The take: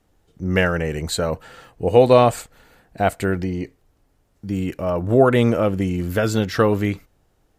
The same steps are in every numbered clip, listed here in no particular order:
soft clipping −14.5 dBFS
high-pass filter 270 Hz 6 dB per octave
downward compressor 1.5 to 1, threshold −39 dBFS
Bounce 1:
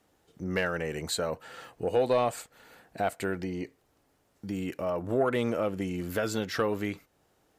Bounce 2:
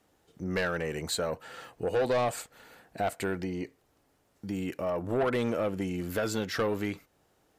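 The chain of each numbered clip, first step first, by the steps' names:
high-pass filter, then downward compressor, then soft clipping
high-pass filter, then soft clipping, then downward compressor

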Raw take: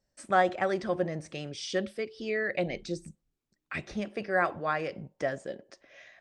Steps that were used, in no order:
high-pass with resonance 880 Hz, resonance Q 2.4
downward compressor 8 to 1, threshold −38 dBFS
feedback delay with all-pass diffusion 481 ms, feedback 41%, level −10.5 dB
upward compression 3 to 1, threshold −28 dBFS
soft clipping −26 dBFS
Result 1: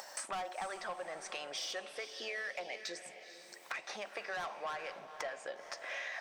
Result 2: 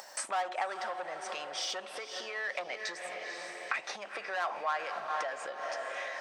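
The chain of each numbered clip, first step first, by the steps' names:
upward compression, then high-pass with resonance, then soft clipping, then downward compressor, then feedback delay with all-pass diffusion
soft clipping, then feedback delay with all-pass diffusion, then downward compressor, then upward compression, then high-pass with resonance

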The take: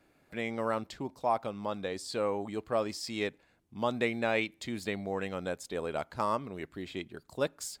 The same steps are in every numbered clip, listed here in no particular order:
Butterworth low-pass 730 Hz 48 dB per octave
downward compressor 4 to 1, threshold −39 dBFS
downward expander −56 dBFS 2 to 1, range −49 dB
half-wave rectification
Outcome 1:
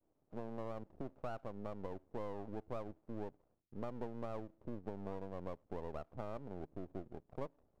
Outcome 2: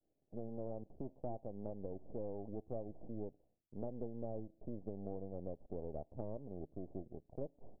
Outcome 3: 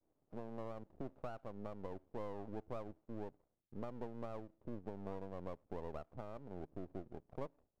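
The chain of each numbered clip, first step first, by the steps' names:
downward expander, then Butterworth low-pass, then half-wave rectification, then downward compressor
half-wave rectification, then Butterworth low-pass, then downward expander, then downward compressor
downward compressor, then Butterworth low-pass, then downward expander, then half-wave rectification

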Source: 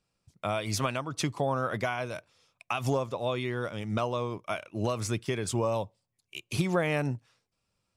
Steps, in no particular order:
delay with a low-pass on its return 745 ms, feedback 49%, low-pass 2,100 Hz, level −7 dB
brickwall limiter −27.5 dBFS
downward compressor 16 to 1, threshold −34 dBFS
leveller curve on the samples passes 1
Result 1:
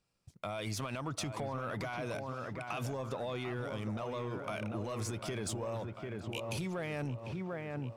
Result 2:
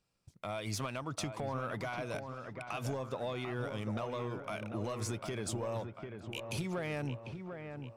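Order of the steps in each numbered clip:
brickwall limiter, then delay with a low-pass on its return, then leveller curve on the samples, then downward compressor
leveller curve on the samples, then downward compressor, then delay with a low-pass on its return, then brickwall limiter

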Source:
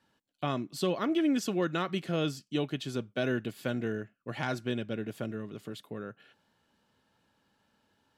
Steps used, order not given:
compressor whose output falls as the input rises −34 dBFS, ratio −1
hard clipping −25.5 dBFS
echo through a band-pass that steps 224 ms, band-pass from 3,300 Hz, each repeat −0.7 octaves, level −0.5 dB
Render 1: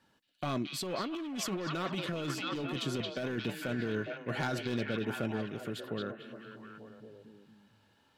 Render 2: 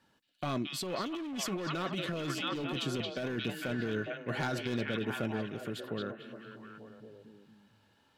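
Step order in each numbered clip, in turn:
hard clipping, then echo through a band-pass that steps, then compressor whose output falls as the input rises
echo through a band-pass that steps, then hard clipping, then compressor whose output falls as the input rises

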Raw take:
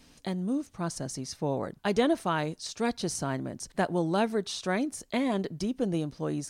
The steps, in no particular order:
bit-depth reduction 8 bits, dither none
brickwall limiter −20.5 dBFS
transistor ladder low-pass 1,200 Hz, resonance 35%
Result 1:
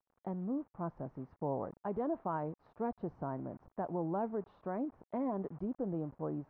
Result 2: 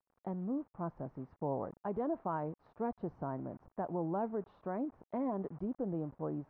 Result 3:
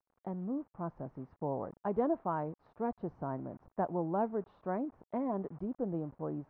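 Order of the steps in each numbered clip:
brickwall limiter, then bit-depth reduction, then transistor ladder low-pass
bit-depth reduction, then brickwall limiter, then transistor ladder low-pass
bit-depth reduction, then transistor ladder low-pass, then brickwall limiter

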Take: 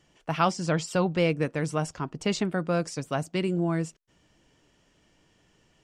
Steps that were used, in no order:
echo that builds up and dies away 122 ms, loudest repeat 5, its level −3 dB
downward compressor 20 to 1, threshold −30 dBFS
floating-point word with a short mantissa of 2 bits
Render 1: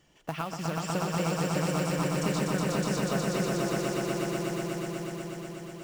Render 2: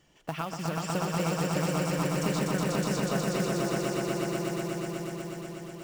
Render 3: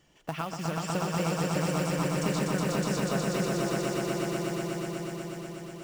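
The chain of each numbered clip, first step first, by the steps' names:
floating-point word with a short mantissa, then downward compressor, then echo that builds up and dies away
downward compressor, then echo that builds up and dies away, then floating-point word with a short mantissa
downward compressor, then floating-point word with a short mantissa, then echo that builds up and dies away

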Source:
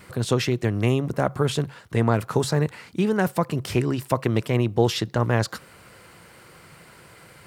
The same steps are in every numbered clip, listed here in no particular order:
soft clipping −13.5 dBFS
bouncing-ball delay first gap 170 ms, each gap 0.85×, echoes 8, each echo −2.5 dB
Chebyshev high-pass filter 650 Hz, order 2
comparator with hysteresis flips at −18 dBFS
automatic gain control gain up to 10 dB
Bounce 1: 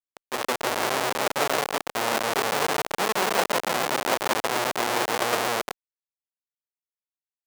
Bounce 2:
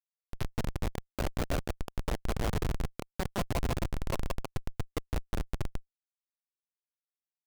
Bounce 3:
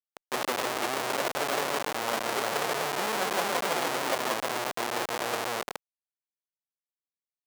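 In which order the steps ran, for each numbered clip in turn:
bouncing-ball delay, then comparator with hysteresis, then automatic gain control, then soft clipping, then Chebyshev high-pass filter
bouncing-ball delay, then automatic gain control, then soft clipping, then Chebyshev high-pass filter, then comparator with hysteresis
bouncing-ball delay, then automatic gain control, then soft clipping, then comparator with hysteresis, then Chebyshev high-pass filter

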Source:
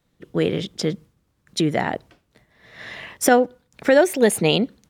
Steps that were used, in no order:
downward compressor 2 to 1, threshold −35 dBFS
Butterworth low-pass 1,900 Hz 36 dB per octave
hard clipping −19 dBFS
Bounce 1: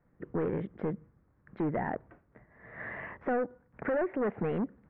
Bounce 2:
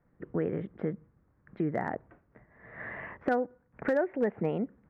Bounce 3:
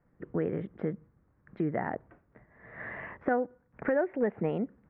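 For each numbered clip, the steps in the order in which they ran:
hard clipping, then downward compressor, then Butterworth low-pass
downward compressor, then Butterworth low-pass, then hard clipping
downward compressor, then hard clipping, then Butterworth low-pass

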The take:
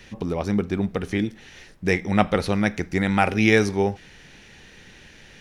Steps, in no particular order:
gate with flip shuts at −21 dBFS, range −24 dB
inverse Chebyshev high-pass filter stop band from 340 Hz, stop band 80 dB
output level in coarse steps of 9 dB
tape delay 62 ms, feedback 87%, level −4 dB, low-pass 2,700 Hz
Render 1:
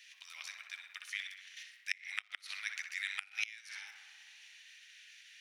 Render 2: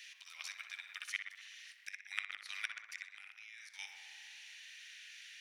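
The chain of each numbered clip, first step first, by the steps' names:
output level in coarse steps, then tape delay, then inverse Chebyshev high-pass filter, then gate with flip
inverse Chebyshev high-pass filter, then gate with flip, then tape delay, then output level in coarse steps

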